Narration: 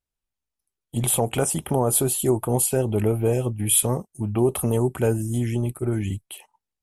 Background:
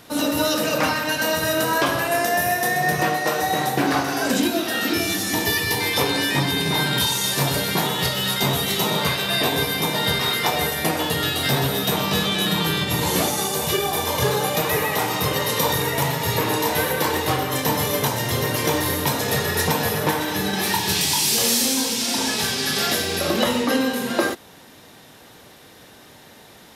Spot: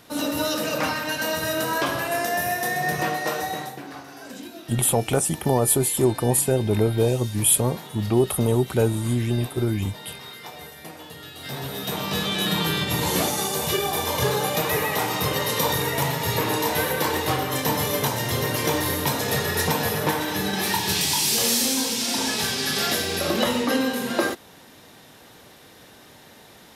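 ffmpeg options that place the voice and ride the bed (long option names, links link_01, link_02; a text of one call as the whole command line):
ffmpeg -i stem1.wav -i stem2.wav -filter_complex "[0:a]adelay=3750,volume=1dB[link_01];[1:a]volume=12dB,afade=type=out:start_time=3.33:duration=0.48:silence=0.199526,afade=type=in:start_time=11.33:duration=1.19:silence=0.158489[link_02];[link_01][link_02]amix=inputs=2:normalize=0" out.wav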